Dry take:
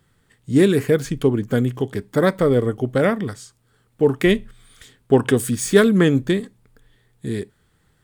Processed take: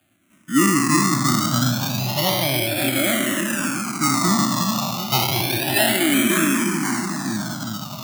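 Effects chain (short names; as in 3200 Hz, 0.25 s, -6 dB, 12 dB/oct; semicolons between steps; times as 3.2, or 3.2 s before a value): spectral trails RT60 1.65 s; on a send: split-band echo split 540 Hz, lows 0.364 s, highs 0.534 s, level -4 dB; on the sum: decimation with a swept rate 22×, swing 60% 0.27 Hz; Chebyshev band-stop 320–640 Hz, order 2; in parallel at +1 dB: compressor, threshold -27 dBFS, peak gain reduction 16 dB; on the sum: HPF 120 Hz 24 dB/oct; high shelf 3700 Hz +7.5 dB; endless phaser -0.33 Hz; gain -3 dB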